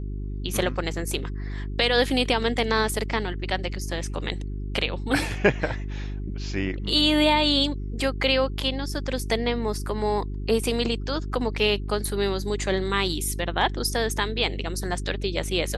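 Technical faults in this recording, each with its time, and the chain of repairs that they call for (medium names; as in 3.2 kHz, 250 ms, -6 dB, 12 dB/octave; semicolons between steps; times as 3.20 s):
hum 50 Hz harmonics 8 -31 dBFS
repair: de-hum 50 Hz, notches 8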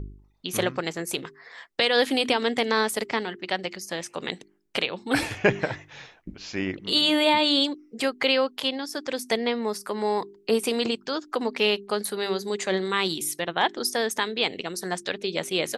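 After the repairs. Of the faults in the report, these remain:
nothing left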